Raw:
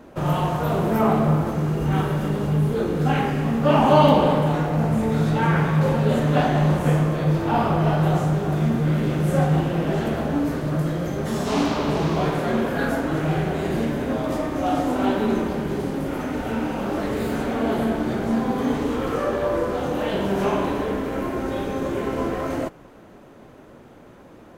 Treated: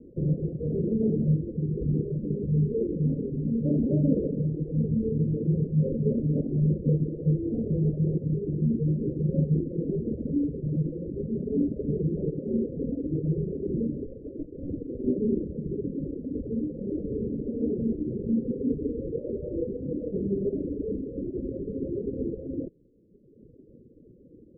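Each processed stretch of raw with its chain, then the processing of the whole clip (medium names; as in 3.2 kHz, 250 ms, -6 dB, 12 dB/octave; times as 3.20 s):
14.06–15.07 s: high-pass 390 Hz + doubling 21 ms -6.5 dB + sliding maximum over 33 samples
whole clip: reverb removal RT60 1.6 s; steep low-pass 500 Hz 72 dB/octave; trim -1.5 dB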